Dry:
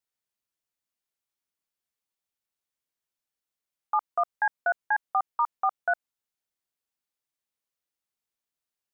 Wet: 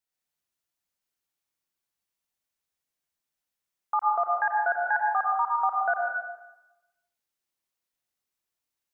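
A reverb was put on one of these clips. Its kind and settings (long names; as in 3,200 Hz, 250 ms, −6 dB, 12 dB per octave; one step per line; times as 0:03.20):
dense smooth reverb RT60 1 s, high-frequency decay 1×, pre-delay 80 ms, DRR −1 dB
level −1 dB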